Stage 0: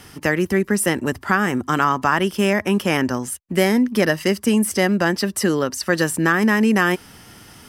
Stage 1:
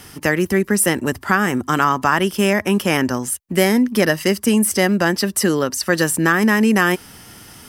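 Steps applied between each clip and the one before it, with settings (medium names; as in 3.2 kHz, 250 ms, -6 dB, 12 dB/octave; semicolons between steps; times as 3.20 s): treble shelf 7.2 kHz +6 dB; trim +1.5 dB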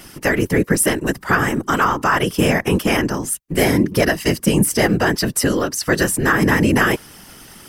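whisper effect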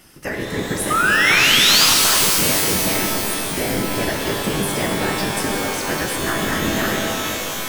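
painted sound rise, 0.90–1.86 s, 1.2–5.1 kHz -9 dBFS; pitch-shifted reverb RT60 3.4 s, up +12 st, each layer -2 dB, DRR -0.5 dB; trim -9.5 dB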